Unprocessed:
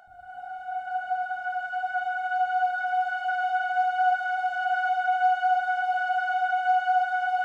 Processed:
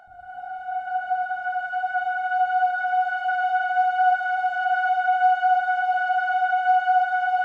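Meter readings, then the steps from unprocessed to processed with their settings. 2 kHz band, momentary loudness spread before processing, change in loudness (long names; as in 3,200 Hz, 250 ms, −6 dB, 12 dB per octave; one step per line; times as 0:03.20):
+3.0 dB, 8 LU, +3.5 dB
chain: high-shelf EQ 3,900 Hz −7.5 dB
level +4 dB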